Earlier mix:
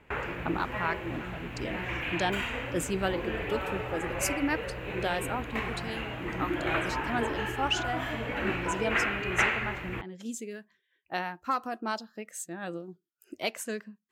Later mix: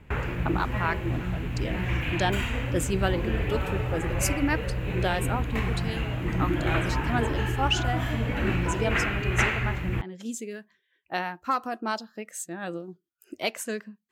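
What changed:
speech +3.0 dB; background: add tone controls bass +13 dB, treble +6 dB

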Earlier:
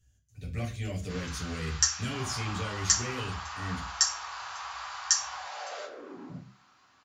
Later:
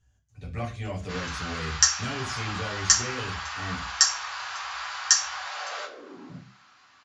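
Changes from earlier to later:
speech: add bell 950 Hz +12.5 dB 1.1 oct; first sound +8.5 dB; master: add air absorption 53 m

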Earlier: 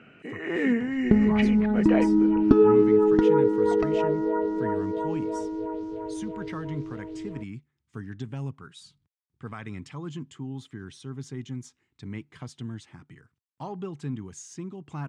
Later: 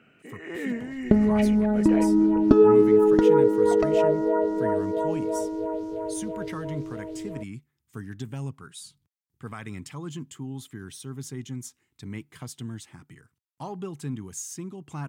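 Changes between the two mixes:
first sound -7.0 dB; second sound: add bell 590 Hz +15 dB 0.29 oct; master: remove air absorption 100 m

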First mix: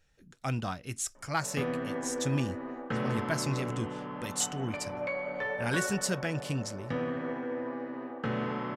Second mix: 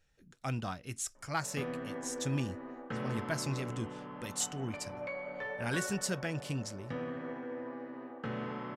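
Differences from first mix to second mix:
speech -3.5 dB; background -6.0 dB

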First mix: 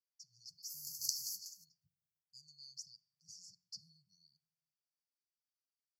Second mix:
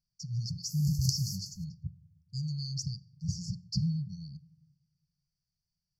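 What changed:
speech +8.0 dB; master: remove differentiator

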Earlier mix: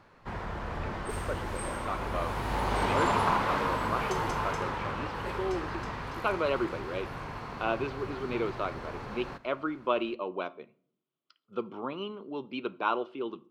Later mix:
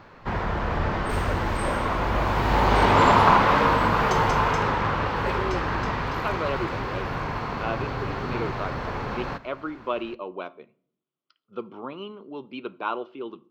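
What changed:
background +10.0 dB; master: add bell 10000 Hz -15 dB 0.65 oct

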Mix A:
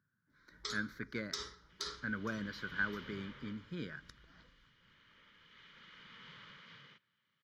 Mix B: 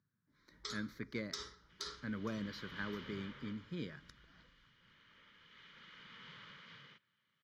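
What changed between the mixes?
speech: add bell 1500 Hz -12.5 dB 0.33 oct; first sound -3.0 dB

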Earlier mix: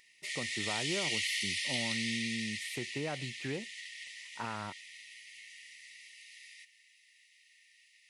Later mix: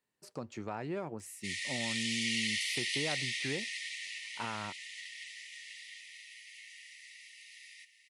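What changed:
background: entry +1.20 s; master: add low shelf 63 Hz -5.5 dB

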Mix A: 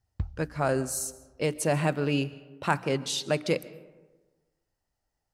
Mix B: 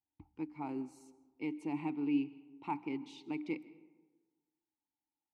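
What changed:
background -3.5 dB; master: add vowel filter u

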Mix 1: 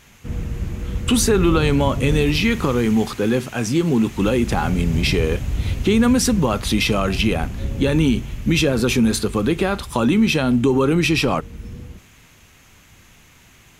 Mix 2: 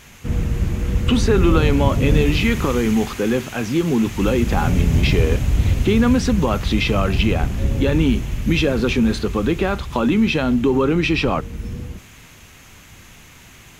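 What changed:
speech: add BPF 130–3800 Hz; background +5.5 dB

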